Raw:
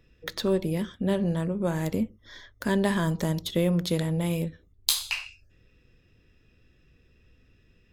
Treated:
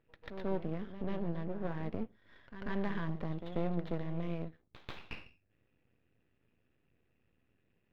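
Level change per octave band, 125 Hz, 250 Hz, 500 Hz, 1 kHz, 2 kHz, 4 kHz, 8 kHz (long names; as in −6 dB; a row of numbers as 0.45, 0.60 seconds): −11.5 dB, −11.5 dB, −11.5 dB, −8.5 dB, −12.5 dB, −23.5 dB, below −40 dB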